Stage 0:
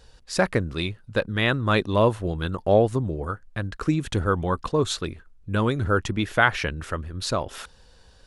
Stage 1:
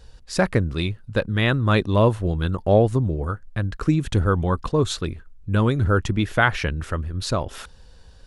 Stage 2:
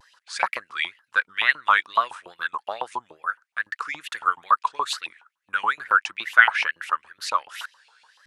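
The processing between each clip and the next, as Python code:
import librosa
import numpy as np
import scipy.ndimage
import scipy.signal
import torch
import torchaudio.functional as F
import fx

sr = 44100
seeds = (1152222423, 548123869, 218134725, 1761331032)

y1 = fx.low_shelf(x, sr, hz=200.0, db=7.5)
y2 = fx.filter_lfo_highpass(y1, sr, shape='saw_up', hz=7.1, low_hz=890.0, high_hz=2900.0, q=7.0)
y2 = fx.wow_flutter(y2, sr, seeds[0], rate_hz=2.1, depth_cents=140.0)
y2 = y2 * 10.0 ** (-3.5 / 20.0)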